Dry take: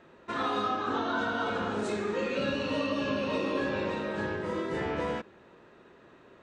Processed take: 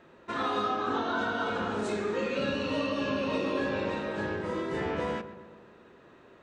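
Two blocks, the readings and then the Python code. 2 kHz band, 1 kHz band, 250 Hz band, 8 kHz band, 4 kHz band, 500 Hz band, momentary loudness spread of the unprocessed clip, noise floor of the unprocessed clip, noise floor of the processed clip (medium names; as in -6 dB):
0.0 dB, +0.5 dB, 0.0 dB, 0.0 dB, 0.0 dB, +0.5 dB, 3 LU, -57 dBFS, -56 dBFS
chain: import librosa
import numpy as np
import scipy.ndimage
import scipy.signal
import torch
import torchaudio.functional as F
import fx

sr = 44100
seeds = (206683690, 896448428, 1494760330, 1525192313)

y = fx.echo_filtered(x, sr, ms=128, feedback_pct=61, hz=2000.0, wet_db=-12.5)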